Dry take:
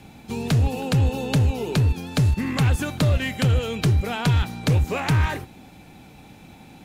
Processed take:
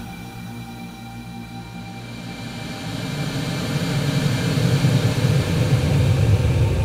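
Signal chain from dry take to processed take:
extreme stretch with random phases 27×, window 0.25 s, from 0:04.51
echo through a band-pass that steps 304 ms, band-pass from 1,200 Hz, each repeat 1.4 octaves, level −3.5 dB

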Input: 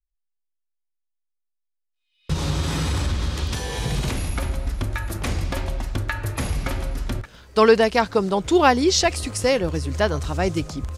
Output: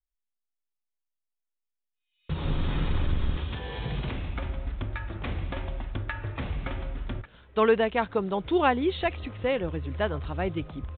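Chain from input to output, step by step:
0:02.44–0:03.37: sub-octave generator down 2 octaves, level +4 dB
downsampling to 8,000 Hz
level −7 dB

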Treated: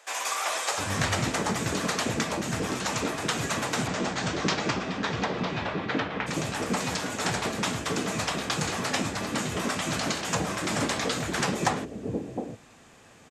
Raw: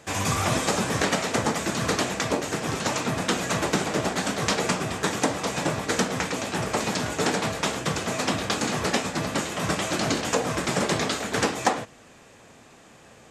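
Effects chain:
0:03.87–0:06.26: low-pass filter 7,900 Hz → 3,200 Hz 24 dB per octave
multiband delay without the direct sound highs, lows 710 ms, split 530 Hz
level −2 dB

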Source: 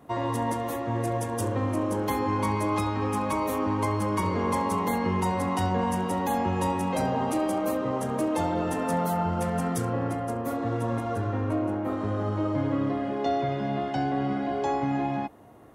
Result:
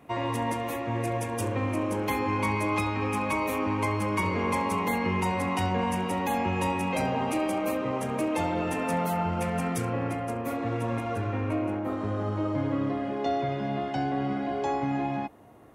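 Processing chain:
parametric band 2,400 Hz +12 dB 0.46 octaves, from 0:11.79 +3 dB
level −1.5 dB

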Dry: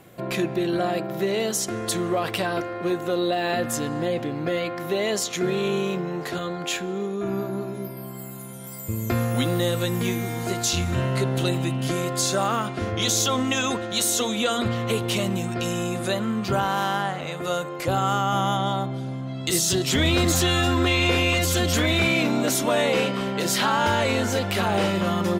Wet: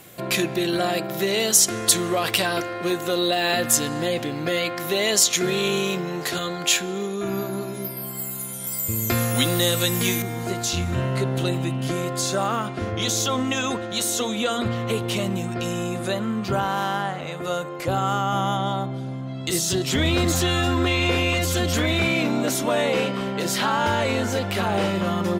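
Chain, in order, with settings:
high-shelf EQ 2,300 Hz +12 dB, from 0:10.22 −2 dB

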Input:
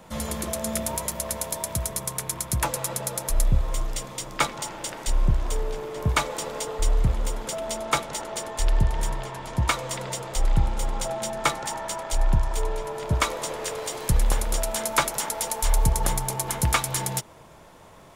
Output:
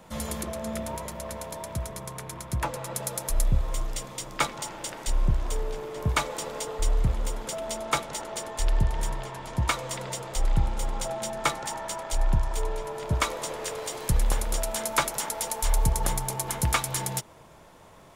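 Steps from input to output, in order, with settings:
0:00.43–0:02.95: high-shelf EQ 4,600 Hz −12 dB
level −2.5 dB

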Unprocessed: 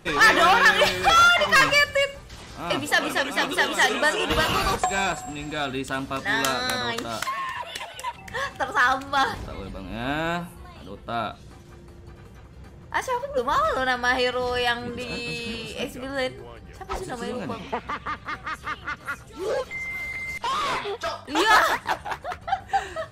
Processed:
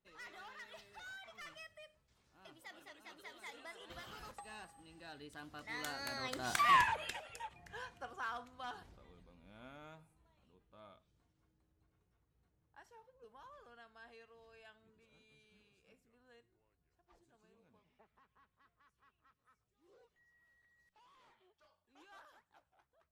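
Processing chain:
source passing by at 0:06.75, 32 m/s, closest 2.1 metres
level +4 dB

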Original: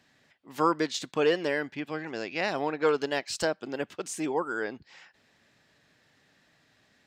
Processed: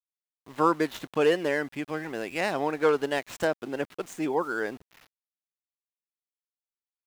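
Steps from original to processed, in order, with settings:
running median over 9 samples
centre clipping without the shift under −49 dBFS
level +2 dB

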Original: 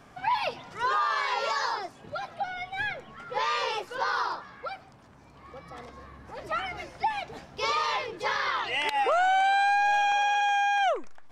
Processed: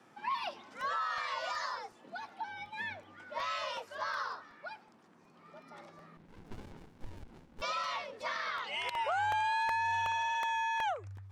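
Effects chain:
frequency shifter +97 Hz
regular buffer underruns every 0.37 s, samples 64, repeat, from 0:00.81
0:06.17–0:07.62: windowed peak hold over 65 samples
level −8.5 dB

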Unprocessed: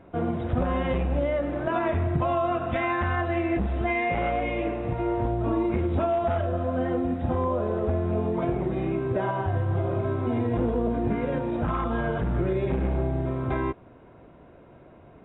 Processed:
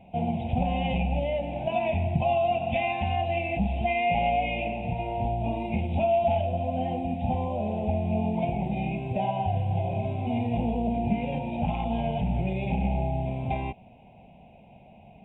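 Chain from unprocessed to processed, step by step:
drawn EQ curve 130 Hz 0 dB, 210 Hz +7 dB, 320 Hz −13 dB, 520 Hz −5 dB, 820 Hz +10 dB, 1,200 Hz −27 dB, 1,700 Hz −20 dB, 2,500 Hz +12 dB, 4,500 Hz −5 dB, 7,900 Hz +1 dB
level −1.5 dB

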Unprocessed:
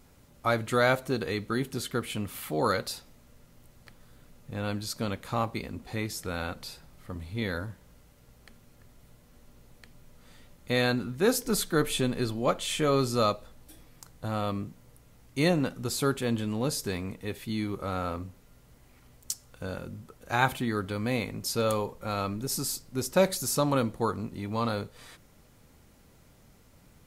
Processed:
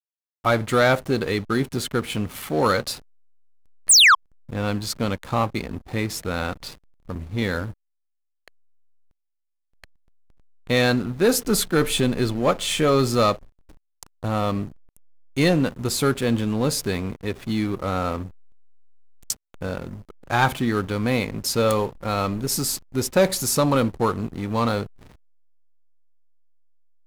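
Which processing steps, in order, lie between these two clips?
sound drawn into the spectrogram fall, 0:03.89–0:04.15, 1,000–10,000 Hz −16 dBFS
leveller curve on the samples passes 2
slack as between gear wheels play −34 dBFS

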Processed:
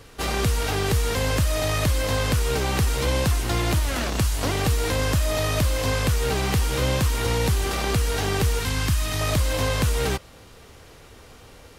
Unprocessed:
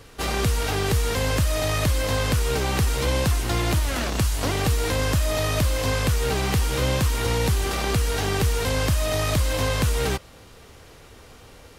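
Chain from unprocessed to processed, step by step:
0:08.59–0:09.21: parametric band 560 Hz −13 dB 0.76 octaves

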